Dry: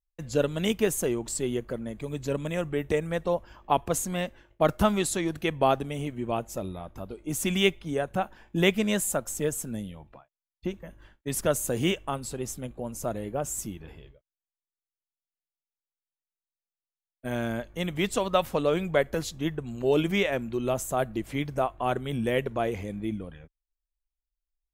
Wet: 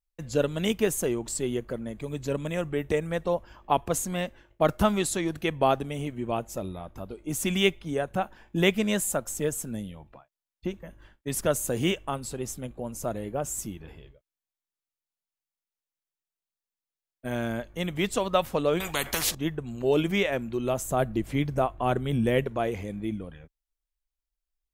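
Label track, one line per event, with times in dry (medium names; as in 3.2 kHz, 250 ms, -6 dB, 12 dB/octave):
18.800000	19.350000	spectrum-flattening compressor 4:1
20.850000	22.440000	bass shelf 320 Hz +6 dB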